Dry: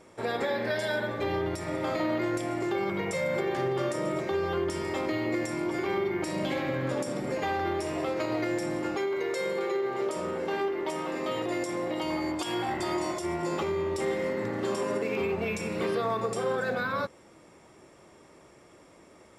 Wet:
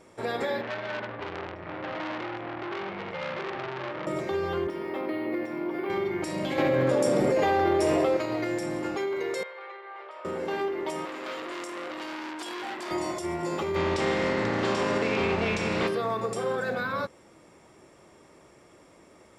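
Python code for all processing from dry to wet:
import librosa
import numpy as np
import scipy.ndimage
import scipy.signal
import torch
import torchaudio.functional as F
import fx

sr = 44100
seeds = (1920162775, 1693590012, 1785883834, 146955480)

y = fx.chain(x, sr, fx.lowpass(hz=2800.0, slope=24),
    fx.transformer_sat(knee_hz=2000.0), at=(0.61, 4.07))
y = fx.chain(y, sr, fx.cheby1_highpass(hz=240.0, order=2),
    fx.air_absorb(metres=220.0),
    fx.resample_linear(factor=3), at=(4.67, 5.9))
y = fx.chain(y, sr, fx.peak_eq(hz=500.0, db=6.5, octaves=1.1),
    fx.env_flatten(amount_pct=100), at=(6.58, 8.17))
y = fx.chain(y, sr, fx.bessel_highpass(hz=1000.0, order=4),
    fx.air_absorb(metres=400.0), at=(9.43, 10.25))
y = fx.chain(y, sr, fx.highpass(hz=230.0, slope=24),
    fx.transformer_sat(knee_hz=2500.0), at=(11.05, 12.91))
y = fx.spec_flatten(y, sr, power=0.63, at=(13.74, 15.87), fade=0.02)
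y = fx.air_absorb(y, sr, metres=140.0, at=(13.74, 15.87), fade=0.02)
y = fx.env_flatten(y, sr, amount_pct=50, at=(13.74, 15.87), fade=0.02)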